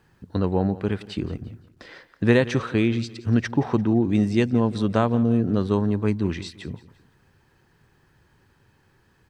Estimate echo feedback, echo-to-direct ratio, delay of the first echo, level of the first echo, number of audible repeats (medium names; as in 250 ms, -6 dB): 39%, -17.5 dB, 172 ms, -18.0 dB, 3